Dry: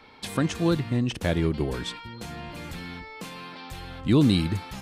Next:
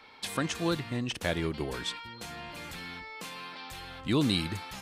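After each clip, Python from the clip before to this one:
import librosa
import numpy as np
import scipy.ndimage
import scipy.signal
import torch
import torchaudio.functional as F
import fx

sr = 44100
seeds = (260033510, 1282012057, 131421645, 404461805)

y = fx.low_shelf(x, sr, hz=480.0, db=-10.0)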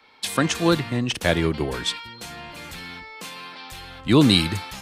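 y = fx.band_widen(x, sr, depth_pct=40)
y = y * librosa.db_to_amplitude(9.0)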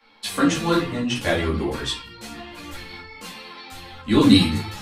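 y = fx.room_shoebox(x, sr, seeds[0], volume_m3=190.0, walls='furnished', distance_m=2.3)
y = fx.ensemble(y, sr)
y = y * librosa.db_to_amplitude(-2.0)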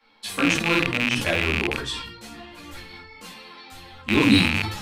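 y = fx.rattle_buzz(x, sr, strikes_db=-27.0, level_db=-6.0)
y = fx.sustainer(y, sr, db_per_s=60.0)
y = y * librosa.db_to_amplitude(-4.0)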